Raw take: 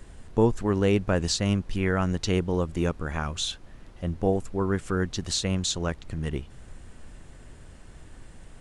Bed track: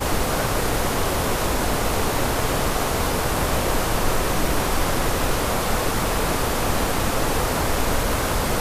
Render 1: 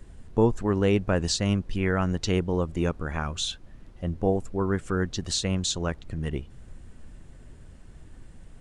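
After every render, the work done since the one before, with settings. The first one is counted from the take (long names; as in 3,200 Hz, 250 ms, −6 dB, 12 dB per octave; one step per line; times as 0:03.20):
broadband denoise 6 dB, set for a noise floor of −48 dBFS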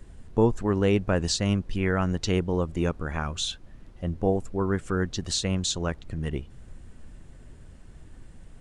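no processing that can be heard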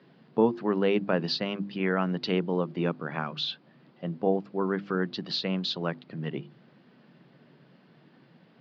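Chebyshev band-pass filter 140–4,800 Hz, order 5
mains-hum notches 50/100/150/200/250/300/350 Hz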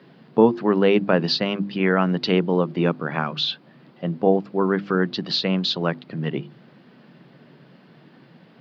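level +7.5 dB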